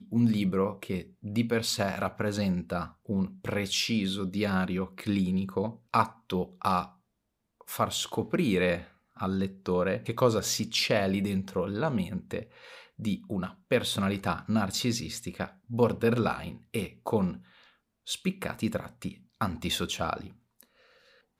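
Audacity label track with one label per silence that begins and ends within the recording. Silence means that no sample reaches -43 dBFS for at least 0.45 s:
6.880000	7.610000	silence
17.380000	18.070000	silence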